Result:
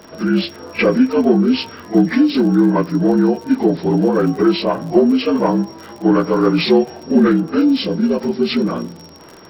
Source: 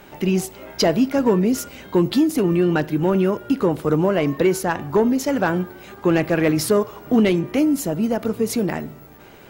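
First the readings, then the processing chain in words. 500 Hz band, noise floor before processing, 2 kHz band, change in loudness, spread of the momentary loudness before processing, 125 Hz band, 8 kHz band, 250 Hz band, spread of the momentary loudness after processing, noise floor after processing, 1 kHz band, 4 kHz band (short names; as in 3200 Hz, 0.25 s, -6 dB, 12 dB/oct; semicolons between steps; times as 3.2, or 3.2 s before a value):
+3.0 dB, -45 dBFS, +2.0 dB, +4.5 dB, 6 LU, +2.0 dB, under -10 dB, +5.5 dB, 6 LU, -40 dBFS, +3.0 dB, +6.0 dB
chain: inharmonic rescaling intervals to 75%; crackle 62/s -33 dBFS; reverse echo 42 ms -17.5 dB; gain +5.5 dB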